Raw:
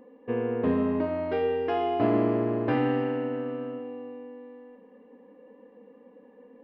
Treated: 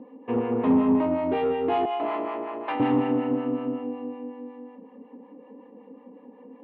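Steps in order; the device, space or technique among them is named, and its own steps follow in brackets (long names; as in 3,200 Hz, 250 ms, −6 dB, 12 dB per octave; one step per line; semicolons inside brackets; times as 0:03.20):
0:01.85–0:02.80: high-pass filter 820 Hz 12 dB per octave
guitar amplifier with harmonic tremolo (two-band tremolo in antiphase 5.4 Hz, depth 70%, crossover 650 Hz; soft clipping −26 dBFS, distortion −14 dB; loudspeaker in its box 100–3,400 Hz, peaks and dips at 270 Hz +6 dB, 510 Hz −3 dB, 890 Hz +6 dB, 1,600 Hz −9 dB)
level +8 dB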